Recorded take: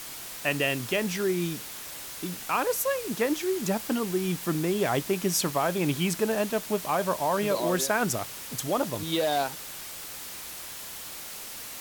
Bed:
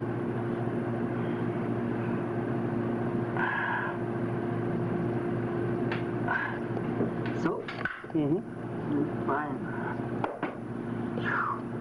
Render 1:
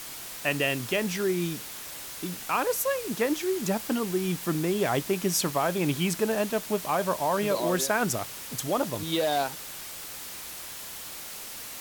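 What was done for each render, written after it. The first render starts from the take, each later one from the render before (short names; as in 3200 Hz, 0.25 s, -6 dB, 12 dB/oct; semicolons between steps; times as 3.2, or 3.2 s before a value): nothing audible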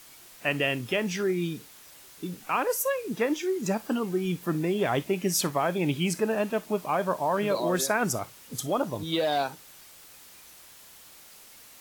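noise print and reduce 11 dB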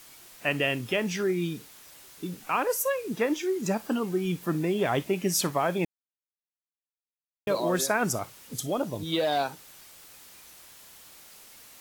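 5.85–7.47 mute; 8.54–9.06 bell 1100 Hz -6 dB 1.1 oct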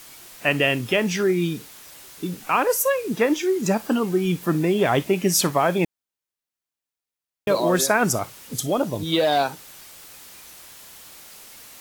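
gain +6.5 dB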